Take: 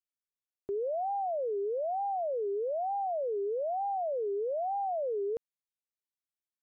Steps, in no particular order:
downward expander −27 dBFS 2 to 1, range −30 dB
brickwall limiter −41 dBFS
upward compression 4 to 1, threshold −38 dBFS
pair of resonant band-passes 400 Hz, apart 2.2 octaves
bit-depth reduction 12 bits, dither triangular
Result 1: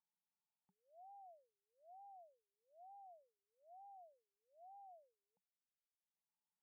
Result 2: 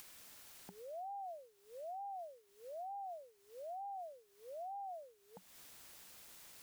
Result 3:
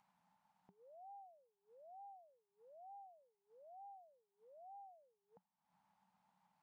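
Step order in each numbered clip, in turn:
upward compression, then bit-depth reduction, then pair of resonant band-passes, then brickwall limiter, then downward expander
pair of resonant band-passes, then bit-depth reduction, then brickwall limiter, then downward expander, then upward compression
brickwall limiter, then bit-depth reduction, then pair of resonant band-passes, then upward compression, then downward expander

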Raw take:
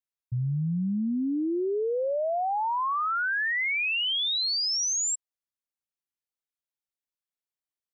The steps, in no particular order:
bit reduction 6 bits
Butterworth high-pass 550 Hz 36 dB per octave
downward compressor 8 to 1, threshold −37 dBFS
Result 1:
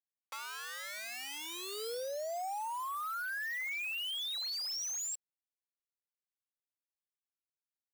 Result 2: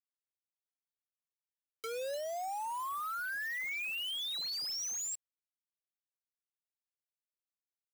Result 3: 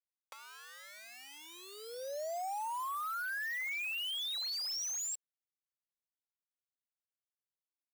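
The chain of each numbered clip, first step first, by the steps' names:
bit reduction, then Butterworth high-pass, then downward compressor
Butterworth high-pass, then bit reduction, then downward compressor
bit reduction, then downward compressor, then Butterworth high-pass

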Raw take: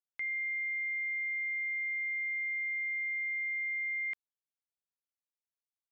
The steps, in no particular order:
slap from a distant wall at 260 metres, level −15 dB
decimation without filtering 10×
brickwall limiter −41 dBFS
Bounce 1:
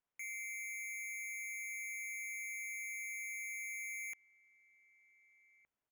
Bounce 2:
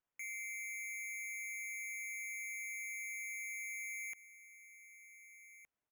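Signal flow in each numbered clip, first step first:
brickwall limiter, then decimation without filtering, then slap from a distant wall
slap from a distant wall, then brickwall limiter, then decimation without filtering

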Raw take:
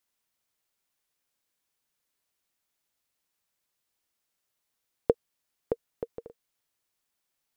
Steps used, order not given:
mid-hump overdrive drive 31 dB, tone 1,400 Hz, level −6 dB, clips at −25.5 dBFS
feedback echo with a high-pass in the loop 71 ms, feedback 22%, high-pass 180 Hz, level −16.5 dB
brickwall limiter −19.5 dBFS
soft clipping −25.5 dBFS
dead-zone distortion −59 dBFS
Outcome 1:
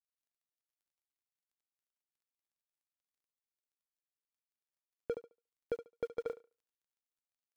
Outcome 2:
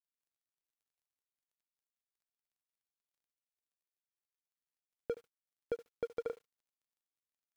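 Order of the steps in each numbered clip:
mid-hump overdrive, then dead-zone distortion, then feedback echo with a high-pass in the loop, then brickwall limiter, then soft clipping
mid-hump overdrive, then brickwall limiter, then soft clipping, then feedback echo with a high-pass in the loop, then dead-zone distortion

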